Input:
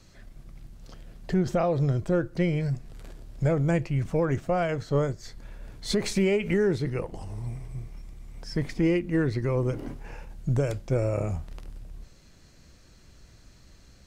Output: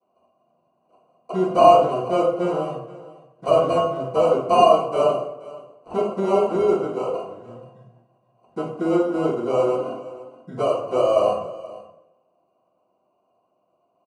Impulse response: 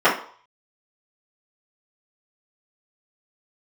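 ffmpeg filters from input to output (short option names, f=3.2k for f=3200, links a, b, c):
-filter_complex "[0:a]highpass=120,afwtdn=0.02,asplit=3[a][b][c];[a]bandpass=f=730:t=q:w=8,volume=0dB[d];[b]bandpass=f=1.09k:t=q:w=8,volume=-6dB[e];[c]bandpass=f=2.44k:t=q:w=8,volume=-9dB[f];[d][e][f]amix=inputs=3:normalize=0,highshelf=f=3.9k:g=-4,acrusher=samples=25:mix=1:aa=0.000001,asoftclip=type=tanh:threshold=-33dB,aecho=1:1:478:0.112[g];[1:a]atrim=start_sample=2205,asetrate=22932,aresample=44100[h];[g][h]afir=irnorm=-1:irlink=0,aresample=22050,aresample=44100,volume=-5.5dB"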